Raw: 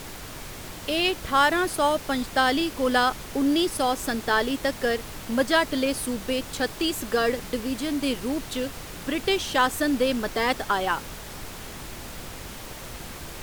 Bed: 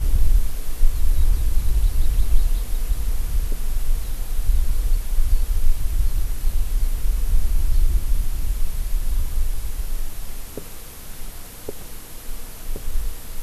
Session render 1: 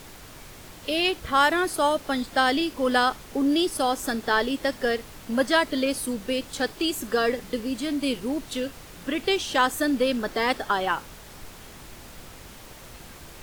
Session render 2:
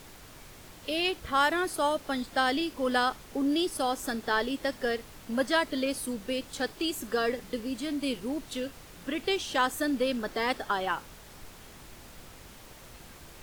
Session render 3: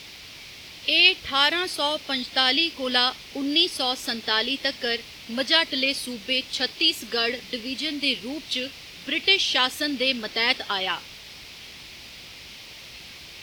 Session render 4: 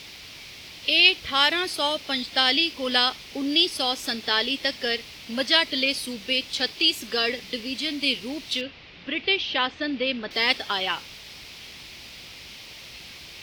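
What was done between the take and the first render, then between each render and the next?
noise print and reduce 6 dB
gain -5 dB
HPF 49 Hz; band shelf 3400 Hz +14.5 dB
8.61–10.31 Gaussian blur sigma 2.3 samples

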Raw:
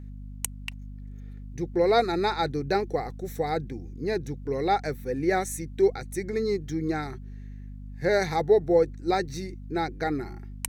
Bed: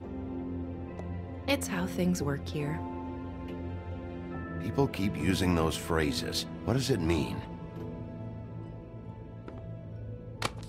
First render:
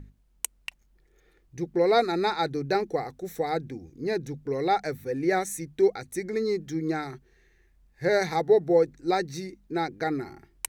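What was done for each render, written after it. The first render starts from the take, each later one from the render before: notches 50/100/150/200/250 Hz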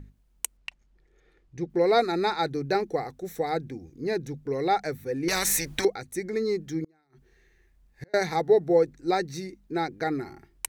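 0.57–1.7 air absorption 63 m; 5.28–5.85 spectral compressor 4:1; 6.84–8.14 flipped gate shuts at -26 dBFS, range -36 dB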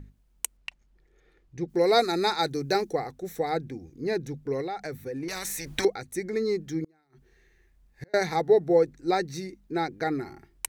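1.68–2.93 tone controls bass -1 dB, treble +10 dB; 4.61–5.67 compressor, threshold -30 dBFS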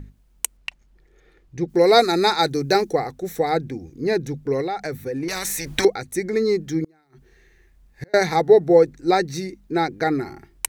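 gain +7 dB; limiter -3 dBFS, peak gain reduction 1 dB

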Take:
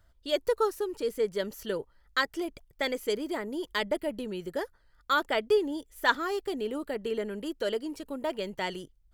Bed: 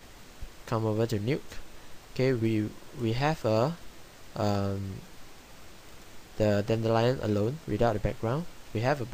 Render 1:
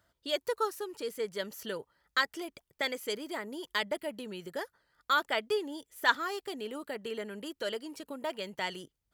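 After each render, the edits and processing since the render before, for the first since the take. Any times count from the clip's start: Bessel high-pass 170 Hz, order 2; dynamic EQ 360 Hz, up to -7 dB, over -42 dBFS, Q 0.71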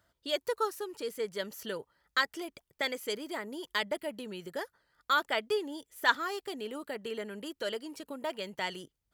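nothing audible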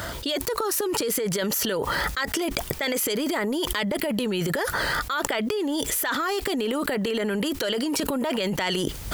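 transient shaper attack -7 dB, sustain +9 dB; fast leveller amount 100%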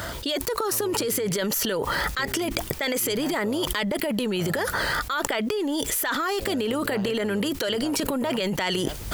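add bed -13 dB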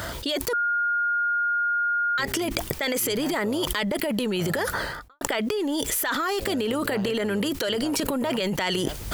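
0.53–2.18 bleep 1420 Hz -21 dBFS; 4.66–5.21 studio fade out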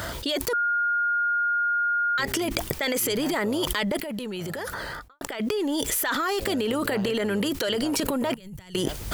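3.97–5.4 compressor, threshold -29 dBFS; 8.34–8.75 EQ curve 110 Hz 0 dB, 270 Hz -20 dB, 650 Hz -27 dB, 4900 Hz -22 dB, 9100 Hz -13 dB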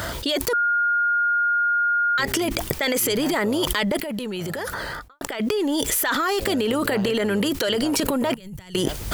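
gain +3.5 dB; limiter -3 dBFS, peak gain reduction 3 dB

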